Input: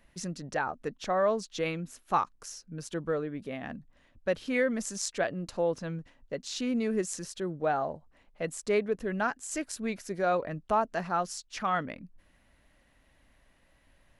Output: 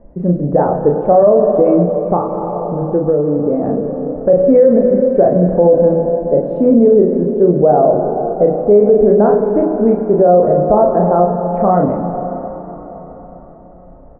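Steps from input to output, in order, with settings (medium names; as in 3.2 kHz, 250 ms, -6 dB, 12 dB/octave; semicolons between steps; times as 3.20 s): four-pole ladder low-pass 710 Hz, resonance 35%; doubling 34 ms -3.5 dB; plate-style reverb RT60 4.7 s, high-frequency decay 0.8×, DRR 6 dB; 1.82–4.30 s: compression, threshold -38 dBFS, peak gain reduction 9 dB; de-hum 79.09 Hz, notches 4; loudness maximiser +28.5 dB; trim -1 dB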